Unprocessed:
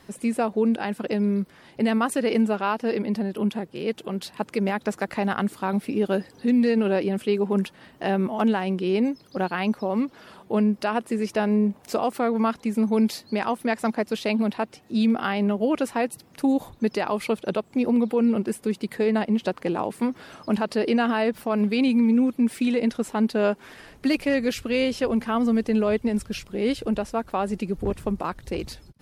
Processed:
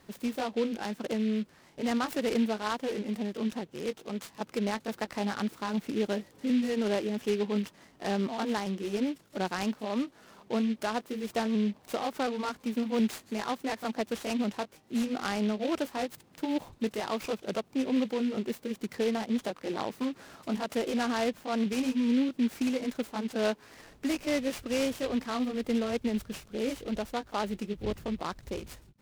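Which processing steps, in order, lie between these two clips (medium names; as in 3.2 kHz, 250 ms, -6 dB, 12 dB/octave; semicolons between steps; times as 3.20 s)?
sawtooth pitch modulation +1.5 st, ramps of 722 ms; delay time shaken by noise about 2.6 kHz, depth 0.053 ms; trim -6 dB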